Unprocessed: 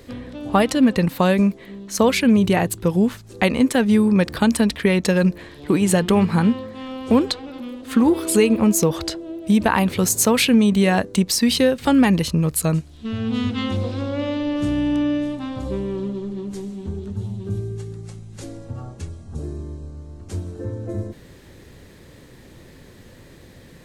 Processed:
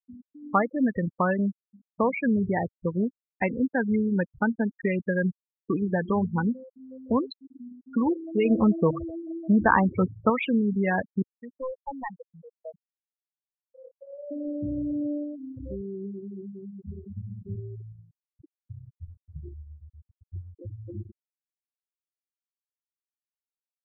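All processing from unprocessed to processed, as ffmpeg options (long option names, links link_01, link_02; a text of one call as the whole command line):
ffmpeg -i in.wav -filter_complex "[0:a]asettb=1/sr,asplit=3[link_01][link_02][link_03];[link_01]atrim=end=8.454[link_04];[link_02]atrim=start=8.45:end=10.3,asetpts=PTS-STARTPTS,afade=type=in:duration=0.004:curve=qsin,afade=type=out:start_time=1.846:duration=0.004:curve=qsin,acontrast=48,lowpass=frequency=2100:poles=1,bandreject=frequency=50:width_type=h:width=6,bandreject=frequency=100:width_type=h:width=6,bandreject=frequency=150:width_type=h:width=6[link_05];[link_03]atrim=start=10.296[link_06];[link_04][link_05]acrossfade=duration=0.004:curve1=hsin:curve2=qsin[link_07];[link_07][link_06]acrossfade=duration=0.004:curve1=qsin:curve2=hsin,asettb=1/sr,asplit=3[link_08][link_09][link_10];[link_08]atrim=end=11.224[link_11];[link_09]atrim=start=11.22:end=14.31,asetpts=PTS-STARTPTS,afade=type=in:duration=0.004:curve=qsin,afade=type=out:start_time=3.086:duration=0.004:curve=qsin,acrossover=split=490 2100:gain=0.1 1 0.0631[link_12][link_13][link_14];[link_12][link_13][link_14]amix=inputs=3:normalize=0,aeval=exprs='clip(val(0),-1,0.0501)':channel_layout=same[link_15];[link_10]atrim=start=14.306[link_16];[link_11][link_15]acrossfade=duration=0.004:curve1=hsin:curve2=qsin[link_17];[link_17][link_16]acrossfade=duration=0.004:curve1=qsin:curve2=hsin,lowpass=2900,afftfilt=real='re*gte(hypot(re,im),0.2)':imag='im*gte(hypot(re,im),0.2)':win_size=1024:overlap=0.75,equalizer=frequency=1400:width=1.3:gain=10,volume=-9dB" out.wav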